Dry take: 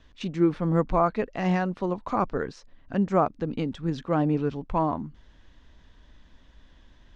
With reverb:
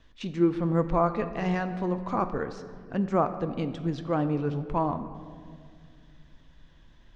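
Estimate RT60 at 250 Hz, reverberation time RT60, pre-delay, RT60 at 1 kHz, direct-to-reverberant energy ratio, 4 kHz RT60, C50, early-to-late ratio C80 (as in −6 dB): 2.8 s, 2.1 s, 6 ms, 1.8 s, 9.0 dB, 1.2 s, 11.5 dB, 12.0 dB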